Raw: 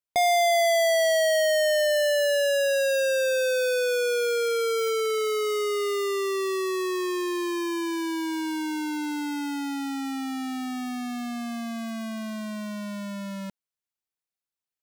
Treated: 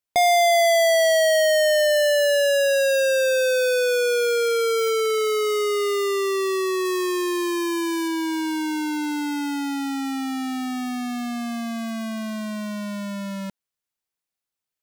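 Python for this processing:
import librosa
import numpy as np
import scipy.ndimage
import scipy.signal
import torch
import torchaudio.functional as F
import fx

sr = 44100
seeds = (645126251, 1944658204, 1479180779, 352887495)

y = fx.peak_eq(x, sr, hz=12000.0, db=4.0, octaves=1.4, at=(6.85, 8.08))
y = y * 10.0 ** (4.0 / 20.0)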